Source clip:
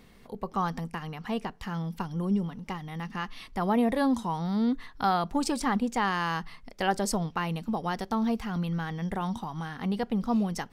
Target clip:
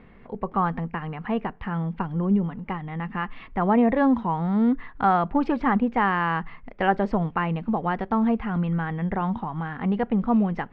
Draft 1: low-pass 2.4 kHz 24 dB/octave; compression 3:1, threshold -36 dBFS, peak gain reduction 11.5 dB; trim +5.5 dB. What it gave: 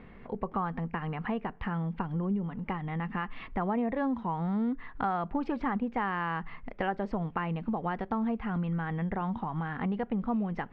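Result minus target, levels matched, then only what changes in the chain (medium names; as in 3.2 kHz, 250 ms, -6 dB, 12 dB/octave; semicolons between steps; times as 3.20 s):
compression: peak gain reduction +11.5 dB
remove: compression 3:1, threshold -36 dBFS, peak gain reduction 11.5 dB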